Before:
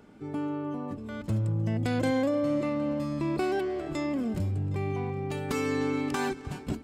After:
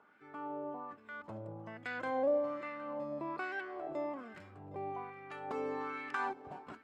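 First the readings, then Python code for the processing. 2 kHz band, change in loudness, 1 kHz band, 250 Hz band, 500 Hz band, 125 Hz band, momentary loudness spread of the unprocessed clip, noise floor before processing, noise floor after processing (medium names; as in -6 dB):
-3.5 dB, -9.5 dB, -3.0 dB, -16.0 dB, -6.5 dB, -23.5 dB, 8 LU, -44 dBFS, -61 dBFS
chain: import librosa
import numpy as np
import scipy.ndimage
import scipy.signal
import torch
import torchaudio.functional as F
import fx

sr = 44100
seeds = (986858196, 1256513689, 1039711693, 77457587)

y = fx.wah_lfo(x, sr, hz=1.2, low_hz=650.0, high_hz=1700.0, q=2.5)
y = y * librosa.db_to_amplitude(1.5)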